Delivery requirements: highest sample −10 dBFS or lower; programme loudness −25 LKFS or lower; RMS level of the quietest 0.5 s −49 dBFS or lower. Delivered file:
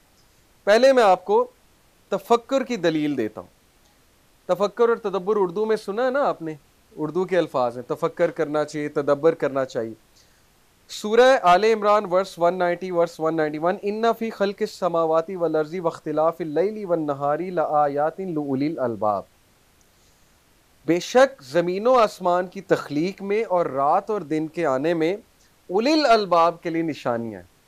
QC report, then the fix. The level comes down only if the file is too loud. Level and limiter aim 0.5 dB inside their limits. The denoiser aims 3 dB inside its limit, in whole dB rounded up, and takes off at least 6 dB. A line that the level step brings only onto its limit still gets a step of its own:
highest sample −5.0 dBFS: out of spec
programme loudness −22.0 LKFS: out of spec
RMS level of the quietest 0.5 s −58 dBFS: in spec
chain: level −3.5 dB
brickwall limiter −10.5 dBFS

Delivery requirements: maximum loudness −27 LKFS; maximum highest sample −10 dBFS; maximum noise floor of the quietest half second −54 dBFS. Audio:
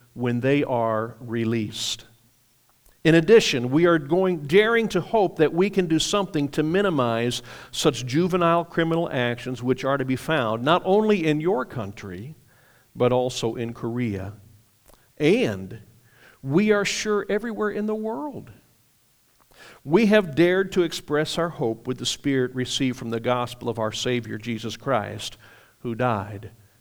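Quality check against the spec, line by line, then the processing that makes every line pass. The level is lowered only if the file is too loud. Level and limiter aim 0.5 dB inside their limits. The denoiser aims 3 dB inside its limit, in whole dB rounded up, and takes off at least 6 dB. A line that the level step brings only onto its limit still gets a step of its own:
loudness −23.0 LKFS: out of spec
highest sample −5.0 dBFS: out of spec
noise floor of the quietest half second −62 dBFS: in spec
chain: level −4.5 dB
brickwall limiter −10.5 dBFS

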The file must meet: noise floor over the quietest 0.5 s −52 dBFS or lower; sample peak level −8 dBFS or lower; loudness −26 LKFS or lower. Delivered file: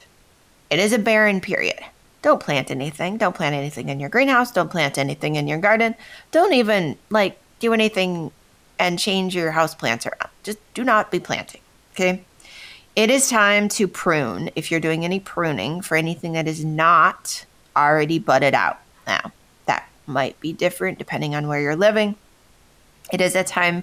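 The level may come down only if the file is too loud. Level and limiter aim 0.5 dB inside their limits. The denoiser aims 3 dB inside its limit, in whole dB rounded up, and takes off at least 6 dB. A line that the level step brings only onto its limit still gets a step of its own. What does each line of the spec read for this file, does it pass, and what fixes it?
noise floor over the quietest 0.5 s −55 dBFS: in spec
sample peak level −5.0 dBFS: out of spec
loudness −20.0 LKFS: out of spec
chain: level −6.5 dB

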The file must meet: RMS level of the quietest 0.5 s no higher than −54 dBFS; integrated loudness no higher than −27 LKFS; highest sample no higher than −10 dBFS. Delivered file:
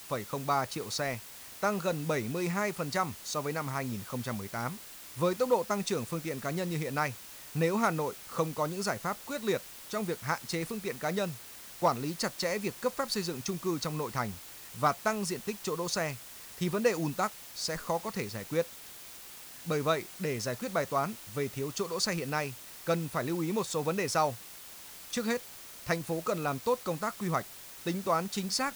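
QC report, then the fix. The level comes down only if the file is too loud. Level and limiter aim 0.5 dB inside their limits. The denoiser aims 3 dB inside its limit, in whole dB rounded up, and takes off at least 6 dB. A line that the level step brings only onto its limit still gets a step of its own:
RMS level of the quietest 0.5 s −48 dBFS: out of spec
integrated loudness −33.0 LKFS: in spec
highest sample −15.5 dBFS: in spec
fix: broadband denoise 9 dB, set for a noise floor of −48 dBFS

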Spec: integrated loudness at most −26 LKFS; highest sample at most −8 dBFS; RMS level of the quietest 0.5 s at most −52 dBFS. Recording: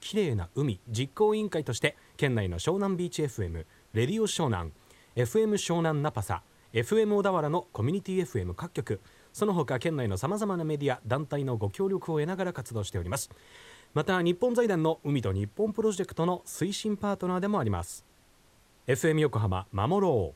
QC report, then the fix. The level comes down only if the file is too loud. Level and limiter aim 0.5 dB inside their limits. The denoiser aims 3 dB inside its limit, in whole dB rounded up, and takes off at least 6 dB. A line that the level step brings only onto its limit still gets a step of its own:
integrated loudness −29.5 LKFS: in spec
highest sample −10.0 dBFS: in spec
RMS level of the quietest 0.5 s −61 dBFS: in spec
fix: no processing needed

